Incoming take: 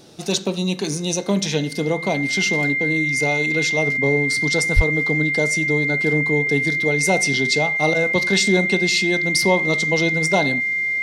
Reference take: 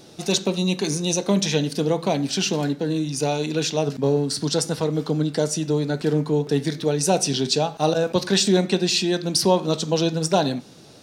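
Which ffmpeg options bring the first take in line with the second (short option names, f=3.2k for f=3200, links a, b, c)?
-filter_complex "[0:a]bandreject=f=2.1k:w=30,asplit=3[a][b][c];[a]afade=t=out:st=4.75:d=0.02[d];[b]highpass=f=140:w=0.5412,highpass=f=140:w=1.3066,afade=t=in:st=4.75:d=0.02,afade=t=out:st=4.87:d=0.02[e];[c]afade=t=in:st=4.87:d=0.02[f];[d][e][f]amix=inputs=3:normalize=0"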